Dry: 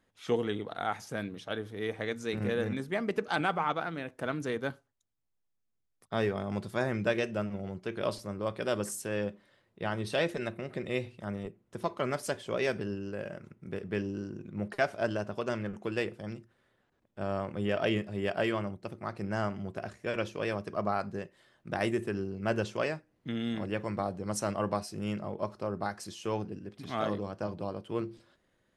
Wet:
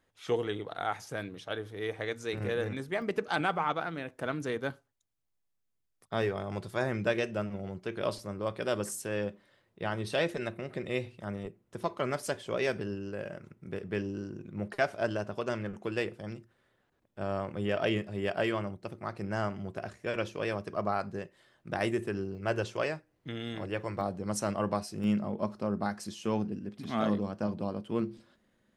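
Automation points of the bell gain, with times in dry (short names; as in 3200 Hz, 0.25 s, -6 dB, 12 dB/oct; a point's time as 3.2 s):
bell 220 Hz 0.38 oct
-9 dB
from 3.02 s -2.5 dB
from 6.22 s -8.5 dB
from 6.82 s -2 dB
from 22.35 s -9.5 dB
from 24.01 s +2.5 dB
from 25.04 s +10 dB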